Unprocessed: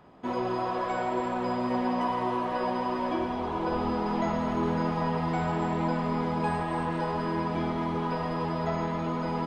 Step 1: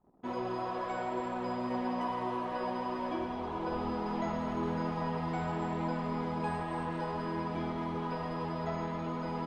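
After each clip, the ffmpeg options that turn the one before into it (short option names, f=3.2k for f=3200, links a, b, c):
-af "anlmdn=0.00631,volume=-6dB"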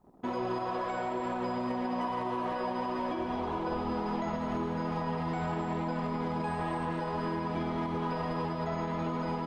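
-af "alimiter=level_in=7.5dB:limit=-24dB:level=0:latency=1:release=138,volume=-7.5dB,volume=7dB"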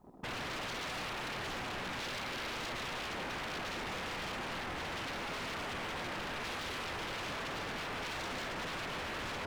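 -af "aeval=exprs='0.0126*(abs(mod(val(0)/0.0126+3,4)-2)-1)':c=same,volume=3dB"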